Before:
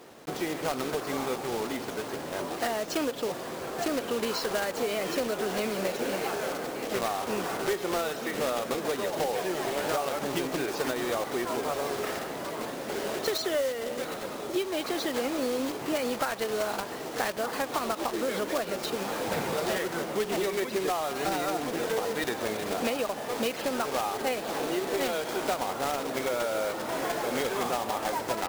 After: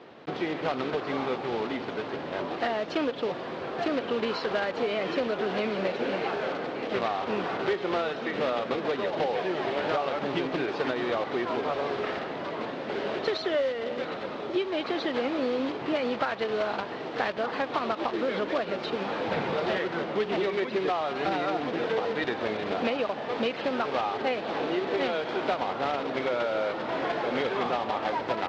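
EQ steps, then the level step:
high-pass filter 78 Hz
low-pass filter 3,900 Hz 24 dB per octave
+1.5 dB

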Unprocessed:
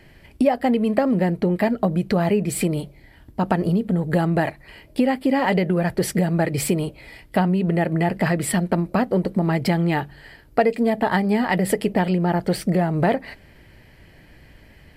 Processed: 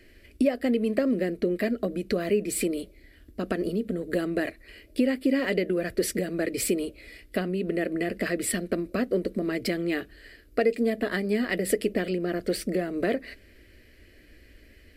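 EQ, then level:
phaser with its sweep stopped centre 360 Hz, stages 4
notch filter 3,200 Hz, Q 20
−2.0 dB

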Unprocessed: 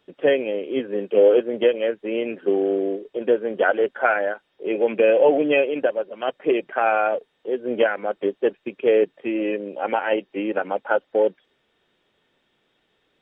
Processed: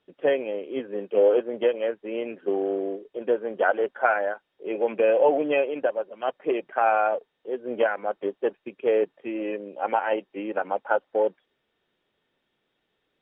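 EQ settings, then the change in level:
dynamic equaliser 920 Hz, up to +8 dB, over −34 dBFS, Q 1
high-frequency loss of the air 64 metres
−7.0 dB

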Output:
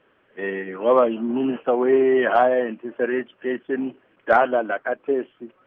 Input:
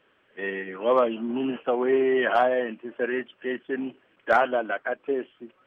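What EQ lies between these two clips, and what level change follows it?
high-shelf EQ 2,700 Hz −11.5 dB
+5.0 dB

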